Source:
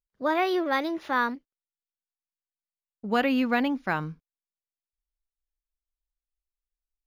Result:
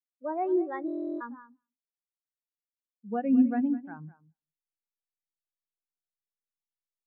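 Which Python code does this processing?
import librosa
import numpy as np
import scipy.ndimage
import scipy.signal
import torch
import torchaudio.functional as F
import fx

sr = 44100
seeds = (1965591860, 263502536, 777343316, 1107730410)

p1 = fx.level_steps(x, sr, step_db=19)
p2 = x + F.gain(torch.from_numpy(p1), -3.0).numpy()
p3 = fx.rev_spring(p2, sr, rt60_s=2.0, pass_ms=(59,), chirp_ms=30, drr_db=14.0)
p4 = fx.backlash(p3, sr, play_db=-36.0)
p5 = p4 + fx.echo_feedback(p4, sr, ms=206, feedback_pct=18, wet_db=-7.0, dry=0)
p6 = fx.buffer_glitch(p5, sr, at_s=(0.86,), block=1024, repeats=14)
p7 = fx.spectral_expand(p6, sr, expansion=2.5)
y = F.gain(torch.from_numpy(p7), -3.0).numpy()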